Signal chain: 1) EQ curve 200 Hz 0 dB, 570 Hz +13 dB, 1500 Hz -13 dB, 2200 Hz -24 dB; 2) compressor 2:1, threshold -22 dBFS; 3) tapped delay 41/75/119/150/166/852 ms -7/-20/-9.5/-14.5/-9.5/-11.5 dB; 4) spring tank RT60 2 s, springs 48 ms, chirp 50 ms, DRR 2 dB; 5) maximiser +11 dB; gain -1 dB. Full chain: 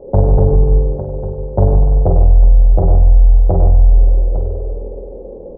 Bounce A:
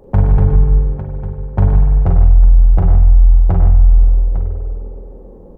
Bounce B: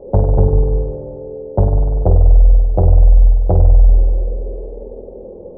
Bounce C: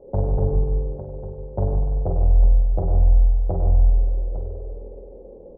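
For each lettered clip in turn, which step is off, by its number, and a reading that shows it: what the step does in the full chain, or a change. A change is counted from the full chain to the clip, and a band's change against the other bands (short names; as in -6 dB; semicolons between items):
1, 500 Hz band -9.0 dB; 3, momentary loudness spread change +5 LU; 5, crest factor change +3.5 dB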